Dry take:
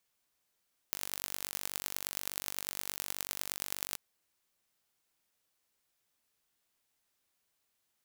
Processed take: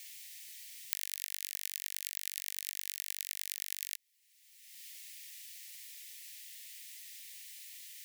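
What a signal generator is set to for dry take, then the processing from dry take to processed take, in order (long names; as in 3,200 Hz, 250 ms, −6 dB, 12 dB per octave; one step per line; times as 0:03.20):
impulse train 48.3 per second, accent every 5, −6.5 dBFS 3.04 s
Butterworth high-pass 1,800 Hz 96 dB per octave
multiband upward and downward compressor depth 100%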